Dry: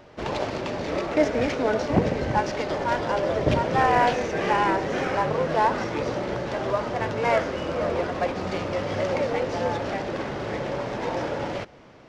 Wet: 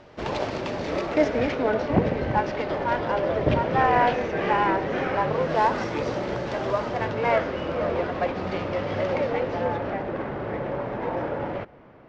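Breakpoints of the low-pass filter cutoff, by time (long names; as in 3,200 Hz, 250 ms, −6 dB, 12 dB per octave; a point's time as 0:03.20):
0:01.00 7,200 Hz
0:01.67 3,300 Hz
0:05.15 3,300 Hz
0:05.65 7,200 Hz
0:06.80 7,200 Hz
0:07.23 3,700 Hz
0:09.21 3,700 Hz
0:10.01 1,900 Hz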